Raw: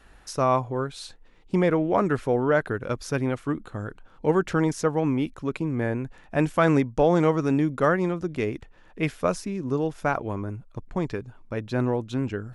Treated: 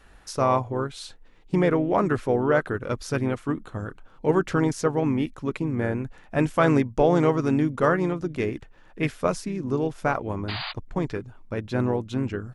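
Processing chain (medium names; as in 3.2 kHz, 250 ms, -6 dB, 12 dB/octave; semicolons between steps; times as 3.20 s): painted sound noise, 10.48–10.72 s, 640–4900 Hz -33 dBFS; harmony voices -3 st -10 dB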